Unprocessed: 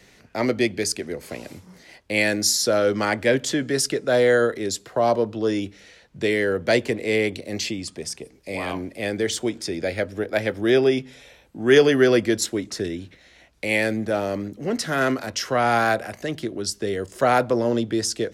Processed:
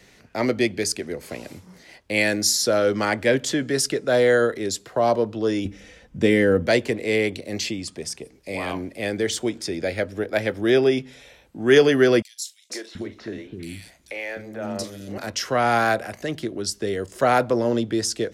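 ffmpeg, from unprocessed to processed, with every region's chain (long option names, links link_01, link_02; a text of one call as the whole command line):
ffmpeg -i in.wav -filter_complex "[0:a]asettb=1/sr,asplit=3[link_01][link_02][link_03];[link_01]atrim=end=5.654[link_04];[link_02]atrim=start=5.65:end=6.67,asetpts=PTS-STARTPTS,afade=type=in:duration=0.004:curve=qsin,afade=type=out:start_time=1.016:duration=0.004:curve=qsin,lowshelf=frequency=300:gain=11.5,bandreject=frequency=4200:width=5.5,aecho=1:1:3.9:0.41,atrim=end_sample=44982[link_05];[link_03]atrim=start=6.666[link_06];[link_04][link_05]acrossfade=duration=0.004:curve1=hsin:curve2=qsin[link_07];[link_07][link_06]acrossfade=duration=0.004:curve1=qsin:curve2=hsin,asettb=1/sr,asplit=3[link_08][link_09][link_10];[link_08]atrim=end=12.224[link_11];[link_09]atrim=start=12.22:end=15.18,asetpts=PTS-STARTPTS,afade=type=in:duration=0.004:curve=qsin,afade=type=out:start_time=2.956:duration=0.004:curve=qsin,acompressor=threshold=-26dB:ratio=4:attack=3.2:release=140:knee=1:detection=peak,asplit=2[link_12][link_13];[link_13]adelay=41,volume=-13dB[link_14];[link_12][link_14]amix=inputs=2:normalize=0,atrim=end_sample=130536,acrossover=split=350|3300[link_15][link_16][link_17];[link_16]adelay=480[link_18];[link_15]adelay=730[link_19];[link_19][link_18][link_17]amix=inputs=3:normalize=0,atrim=end_sample=130536[link_20];[link_10]atrim=start=15.176[link_21];[link_11][link_20]acrossfade=duration=0.004:curve1=hsin:curve2=qsin[link_22];[link_22][link_21]acrossfade=duration=0.004:curve1=qsin:curve2=hsin" out.wav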